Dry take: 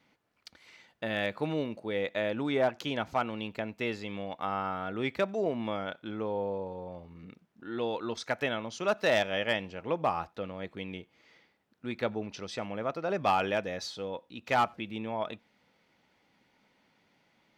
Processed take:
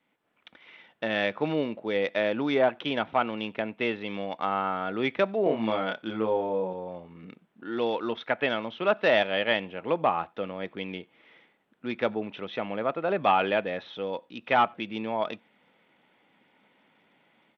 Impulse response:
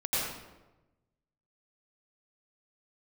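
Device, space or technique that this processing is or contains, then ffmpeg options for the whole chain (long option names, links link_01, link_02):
Bluetooth headset: -filter_complex "[0:a]asettb=1/sr,asplit=3[link_01][link_02][link_03];[link_01]atrim=end=5.434[link_04];[link_02]atrim=start=5.43:end=6.73,asetpts=PTS-STARTPTS,afade=type=in:duration=0.004:curve=qsin,afade=type=out:start_time=1.296:duration=0.004:curve=qsin,asplit=2[link_05][link_06];[link_06]adelay=27,volume=-3dB[link_07];[link_05][link_07]amix=inputs=2:normalize=0,atrim=end_sample=57330[link_08];[link_03]atrim=start=6.726[link_09];[link_04][link_08]acrossfade=duration=0.004:curve1=hsin:curve2=qsin[link_10];[link_10][link_09]acrossfade=duration=0.004:curve1=qsin:curve2=hsin,highpass=170,dynaudnorm=framelen=140:gausssize=3:maxgain=11dB,aresample=8000,aresample=44100,volume=-6dB" -ar 32000 -c:a sbc -b:a 64k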